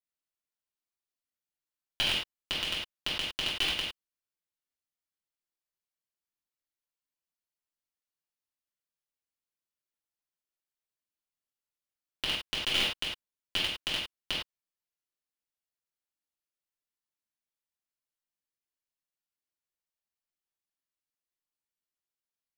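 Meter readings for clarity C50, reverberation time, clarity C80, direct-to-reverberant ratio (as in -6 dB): 1.5 dB, not exponential, 6.0 dB, -8.5 dB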